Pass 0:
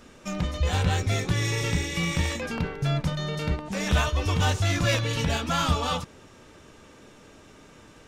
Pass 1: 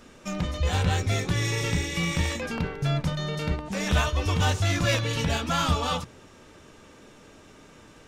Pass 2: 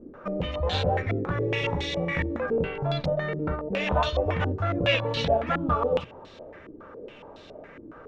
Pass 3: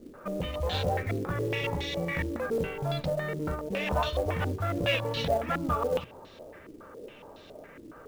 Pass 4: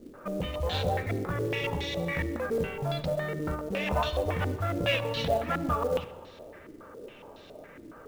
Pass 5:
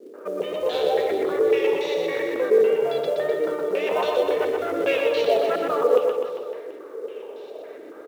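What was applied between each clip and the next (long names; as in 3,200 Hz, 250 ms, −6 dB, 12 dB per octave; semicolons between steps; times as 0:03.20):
mains-hum notches 60/120 Hz
parametric band 540 Hz +8 dB 0.95 octaves; in parallel at +0.5 dB: downward compressor, threshold −31 dBFS, peak gain reduction 14.5 dB; on the sum: low-pass on a step sequencer 7.2 Hz 320–4,000 Hz; level −7 dB
in parallel at −11 dB: soft clipping −25.5 dBFS, distortion −10 dB; on the sum: log-companded quantiser 6 bits; level −5 dB
convolution reverb RT60 1.3 s, pre-delay 58 ms, DRR 15.5 dB
high-pass with resonance 420 Hz, resonance Q 5.1; tape wow and flutter 45 cents; on a send: reverse bouncing-ball delay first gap 120 ms, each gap 1.1×, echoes 5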